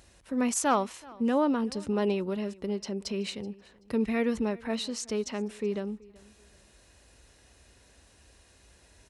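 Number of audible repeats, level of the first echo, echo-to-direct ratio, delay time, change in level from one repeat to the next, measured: 2, -23.0 dB, -22.5 dB, 0.379 s, -11.5 dB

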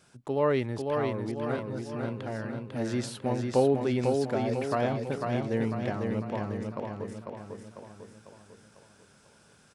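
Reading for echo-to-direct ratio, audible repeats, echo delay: -3.0 dB, 6, 0.498 s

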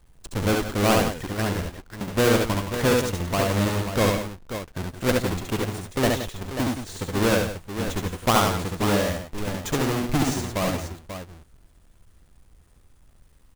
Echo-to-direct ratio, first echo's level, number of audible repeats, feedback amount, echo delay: -1.0 dB, -3.0 dB, 3, no steady repeat, 69 ms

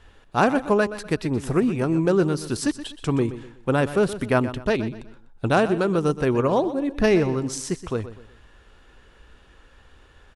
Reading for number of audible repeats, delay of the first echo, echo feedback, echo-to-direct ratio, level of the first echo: 3, 0.124 s, 35%, -13.0 dB, -13.5 dB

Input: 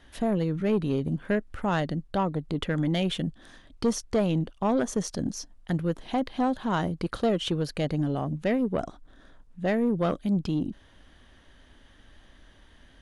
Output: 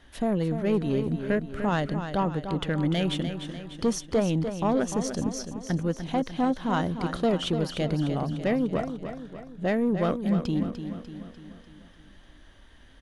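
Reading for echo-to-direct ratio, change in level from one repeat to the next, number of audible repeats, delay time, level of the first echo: -7.5 dB, -5.5 dB, 5, 0.297 s, -9.0 dB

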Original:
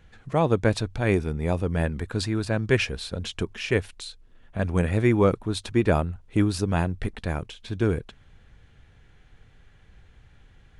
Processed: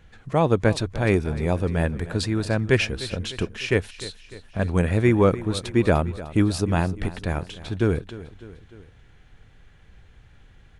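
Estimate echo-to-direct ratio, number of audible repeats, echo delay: -15.0 dB, 3, 0.301 s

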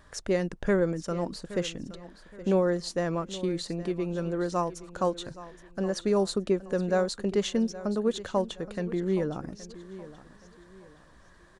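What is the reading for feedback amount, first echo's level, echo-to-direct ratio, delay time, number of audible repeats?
35%, -16.0 dB, -15.5 dB, 0.821 s, 3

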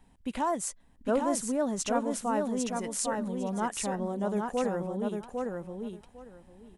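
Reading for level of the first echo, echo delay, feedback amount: -4.0 dB, 0.802 s, 17%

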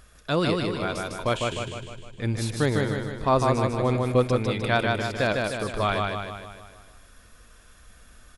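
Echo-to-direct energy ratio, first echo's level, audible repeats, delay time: -1.5 dB, -3.0 dB, 6, 0.153 s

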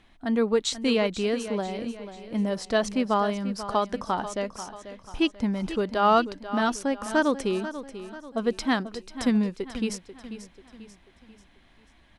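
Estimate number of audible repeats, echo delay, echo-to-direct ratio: 4, 0.489 s, -11.5 dB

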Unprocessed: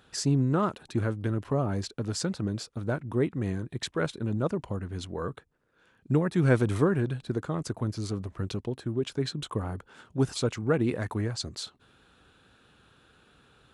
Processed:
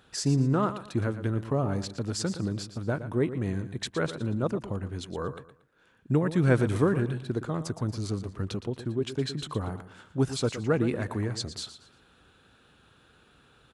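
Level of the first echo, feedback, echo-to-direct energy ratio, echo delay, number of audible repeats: -12.0 dB, 30%, -11.5 dB, 0.116 s, 3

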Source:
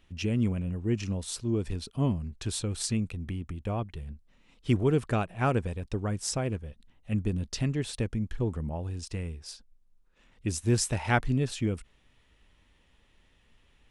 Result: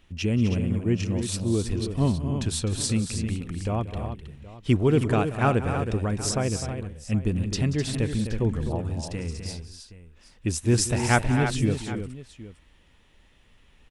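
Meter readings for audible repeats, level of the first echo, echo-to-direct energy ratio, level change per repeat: 4, -15.5 dB, -5.0 dB, no steady repeat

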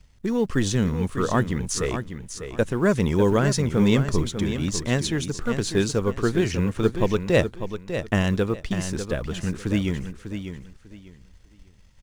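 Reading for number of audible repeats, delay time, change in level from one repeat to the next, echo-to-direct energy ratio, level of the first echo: 3, 0.597 s, -13.0 dB, -9.0 dB, -9.0 dB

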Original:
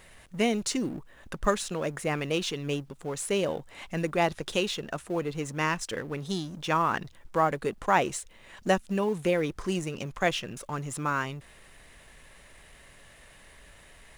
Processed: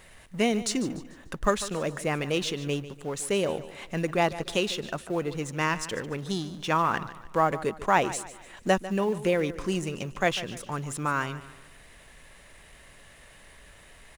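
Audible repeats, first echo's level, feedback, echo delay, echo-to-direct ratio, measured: 3, -15.0 dB, 39%, 0.147 s, -14.5 dB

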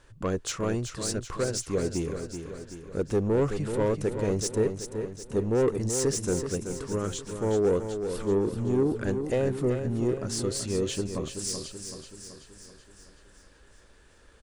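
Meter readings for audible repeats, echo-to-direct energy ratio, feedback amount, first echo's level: 6, -6.5 dB, 55%, -8.0 dB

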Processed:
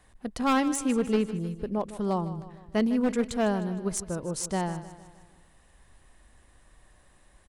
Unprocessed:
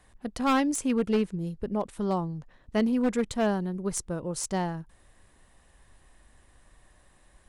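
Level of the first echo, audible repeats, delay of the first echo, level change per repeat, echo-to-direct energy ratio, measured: -14.0 dB, 4, 0.154 s, -6.0 dB, -12.5 dB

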